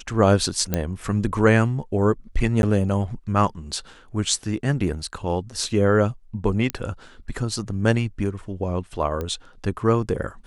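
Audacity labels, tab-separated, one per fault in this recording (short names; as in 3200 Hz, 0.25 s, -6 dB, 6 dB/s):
0.740000	0.740000	pop -7 dBFS
2.620000	2.630000	gap
6.700000	6.700000	pop -9 dBFS
9.210000	9.210000	pop -16 dBFS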